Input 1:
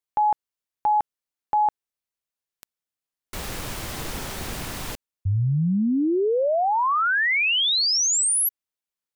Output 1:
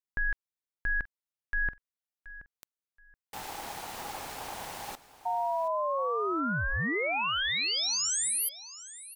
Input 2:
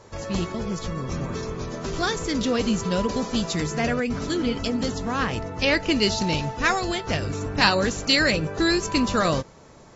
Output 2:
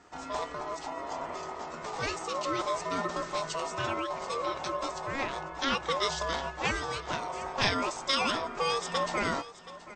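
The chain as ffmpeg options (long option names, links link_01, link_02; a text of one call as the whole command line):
ffmpeg -i in.wav -af "aeval=exprs='val(0)*sin(2*PI*820*n/s)':channel_layout=same,aecho=1:1:726|1452:0.15|0.0329,volume=-5.5dB" out.wav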